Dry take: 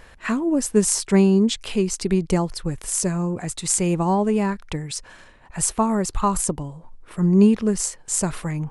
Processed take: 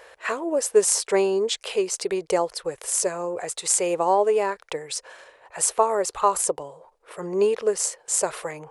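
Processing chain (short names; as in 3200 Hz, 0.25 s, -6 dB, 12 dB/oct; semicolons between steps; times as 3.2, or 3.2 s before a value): HPF 150 Hz 6 dB/oct; resonant low shelf 330 Hz -13 dB, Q 3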